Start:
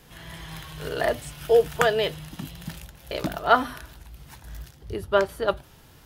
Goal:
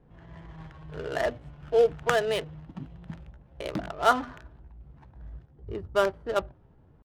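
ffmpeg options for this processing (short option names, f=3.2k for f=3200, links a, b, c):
-af "atempo=0.86,adynamicsmooth=sensitivity=4:basefreq=710,volume=-3.5dB"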